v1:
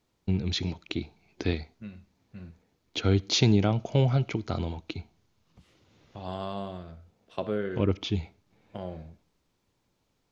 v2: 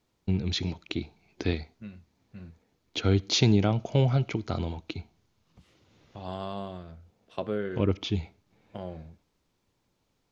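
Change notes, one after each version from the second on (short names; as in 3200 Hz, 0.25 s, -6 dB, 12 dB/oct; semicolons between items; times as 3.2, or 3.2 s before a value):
second voice: send -9.5 dB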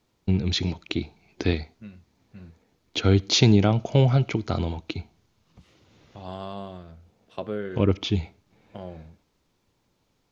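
first voice +4.5 dB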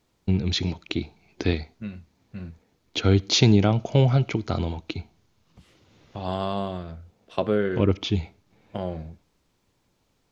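second voice +8.0 dB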